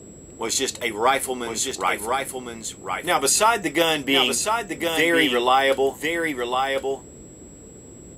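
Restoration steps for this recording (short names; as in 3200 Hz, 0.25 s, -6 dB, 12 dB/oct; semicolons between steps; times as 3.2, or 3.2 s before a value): notch 7700 Hz, Q 30; interpolate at 1.71/2.65, 2.1 ms; noise print and reduce 25 dB; inverse comb 1.055 s -5 dB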